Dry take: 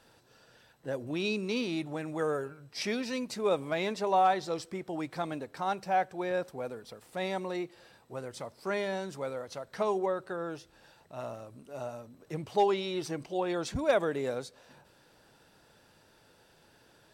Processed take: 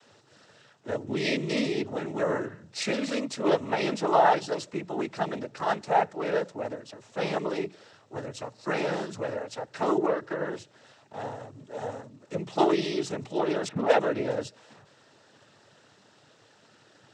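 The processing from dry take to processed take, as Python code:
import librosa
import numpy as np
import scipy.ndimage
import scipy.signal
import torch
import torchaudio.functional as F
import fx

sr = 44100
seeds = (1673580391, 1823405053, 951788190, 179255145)

y = fx.env_lowpass(x, sr, base_hz=1300.0, full_db=-21.5, at=(13.68, 14.3))
y = fx.noise_vocoder(y, sr, seeds[0], bands=12)
y = fx.hum_notches(y, sr, base_hz=60, count=3)
y = y * librosa.db_to_amplitude(4.5)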